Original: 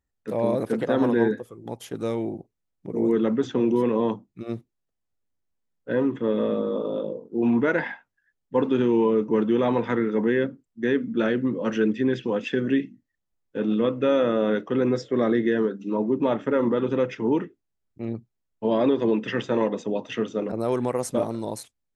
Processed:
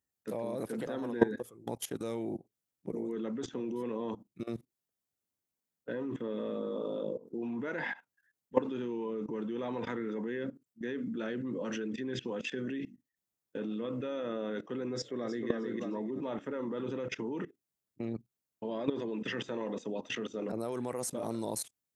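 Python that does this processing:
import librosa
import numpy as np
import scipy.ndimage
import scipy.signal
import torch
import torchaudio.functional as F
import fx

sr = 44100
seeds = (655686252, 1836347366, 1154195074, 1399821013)

y = fx.echo_throw(x, sr, start_s=14.93, length_s=0.55, ms=310, feedback_pct=25, wet_db=-3.5)
y = scipy.signal.sosfilt(scipy.signal.butter(2, 110.0, 'highpass', fs=sr, output='sos'), y)
y = fx.high_shelf(y, sr, hz=6300.0, db=11.0)
y = fx.level_steps(y, sr, step_db=18)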